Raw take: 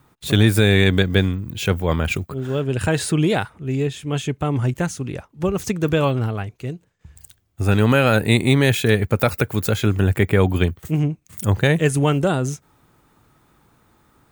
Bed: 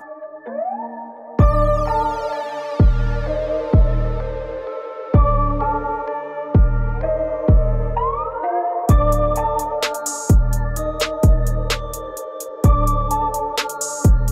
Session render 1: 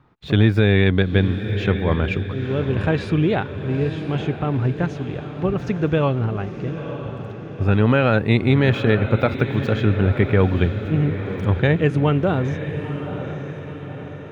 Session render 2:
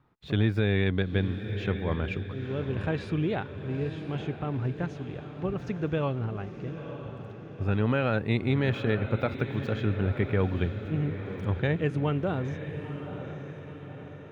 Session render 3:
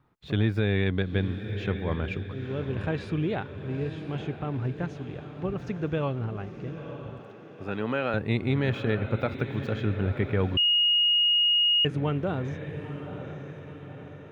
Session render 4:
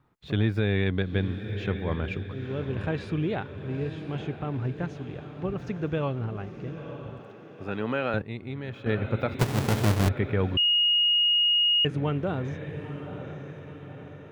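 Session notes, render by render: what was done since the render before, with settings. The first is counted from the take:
air absorption 270 m; on a send: diffused feedback echo 0.943 s, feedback 53%, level -9.5 dB
gain -9.5 dB
7.19–8.14 Bessel high-pass 260 Hz; 10.57–11.85 bleep 2870 Hz -19 dBFS
8.22–8.86 gain -10 dB; 9.39–10.09 half-waves squared off

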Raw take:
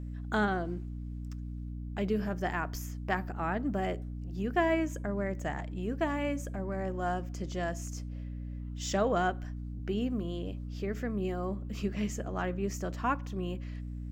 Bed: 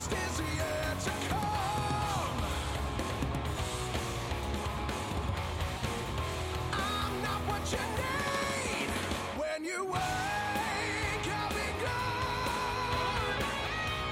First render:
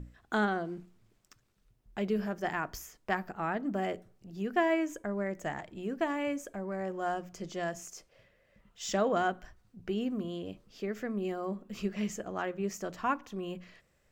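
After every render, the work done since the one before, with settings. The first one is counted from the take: notches 60/120/180/240/300 Hz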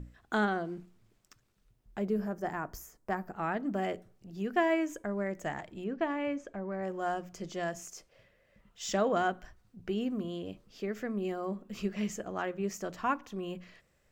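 1.98–3.33 bell 3100 Hz -11.5 dB 1.7 oct; 5.84–6.83 air absorption 150 m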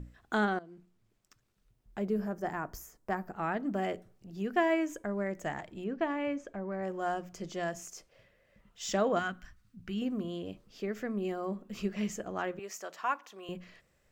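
0.59–2.51 fade in equal-power, from -16 dB; 9.19–10.02 band shelf 560 Hz -11.5 dB; 12.59–13.49 HPF 620 Hz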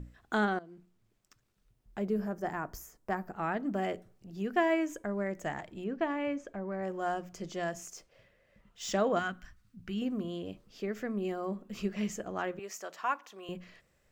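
7.96–8.92 median filter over 3 samples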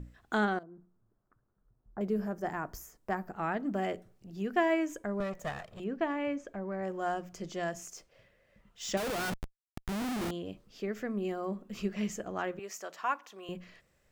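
0.63–2.01 steep low-pass 1500 Hz; 5.2–5.8 minimum comb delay 1.6 ms; 8.97–10.31 Schmitt trigger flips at -42.5 dBFS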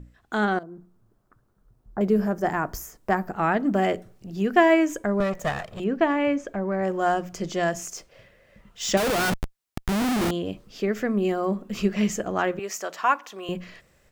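AGC gain up to 10.5 dB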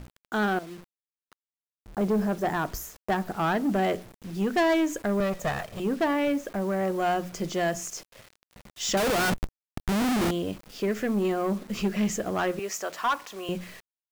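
soft clip -19 dBFS, distortion -12 dB; bit-crush 8-bit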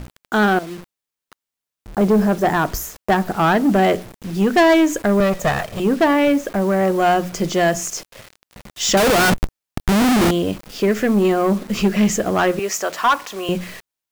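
gain +10 dB

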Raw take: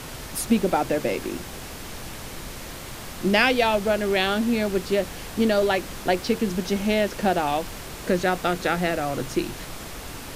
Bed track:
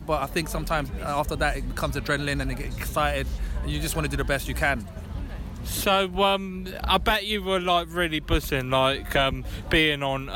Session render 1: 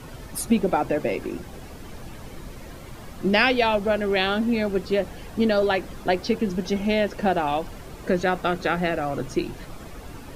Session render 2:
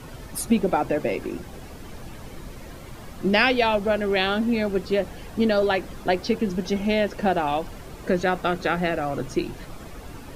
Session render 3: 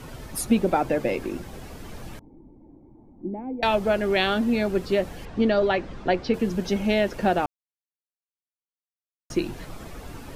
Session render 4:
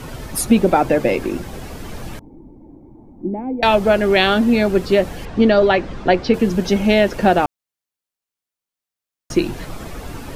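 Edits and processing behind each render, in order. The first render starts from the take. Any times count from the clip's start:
denoiser 11 dB, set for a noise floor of -37 dBFS
nothing audible
2.19–3.63 vocal tract filter u; 5.25–6.34 air absorption 130 m; 7.46–9.3 mute
gain +8 dB; limiter -2 dBFS, peak gain reduction 1.5 dB

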